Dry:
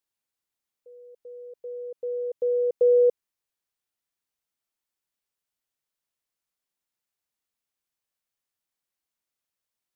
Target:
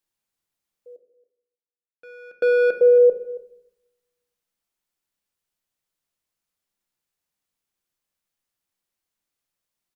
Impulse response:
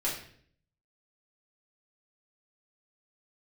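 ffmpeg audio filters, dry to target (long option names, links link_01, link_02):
-filter_complex "[0:a]asettb=1/sr,asplit=3[link_01][link_02][link_03];[link_01]atrim=end=0.964[link_04];[link_02]atrim=start=0.96:end=2.73,asetpts=PTS-STARTPTS,afade=type=in:duration=0.004:curve=qsin,afade=type=out:start_time=1.766:duration=0.004:curve=qsin,acrusher=bits=3:mix=0:aa=0.5[link_05];[link_03]atrim=start=2.726[link_06];[link_04][link_05]acrossfade=duration=0.004:curve1=hsin:curve2=qsin[link_07];[link_07][link_06]acrossfade=duration=0.004:curve1=qsin:curve2=hsin,aecho=1:1:276:0.112,asplit=2[link_08][link_09];[1:a]atrim=start_sample=2205,asetrate=26901,aresample=44100,lowshelf=frequency=380:gain=10.5[link_10];[link_09][link_10]afir=irnorm=-1:irlink=0,volume=-18.5dB[link_11];[link_08][link_11]amix=inputs=2:normalize=0,volume=1.5dB"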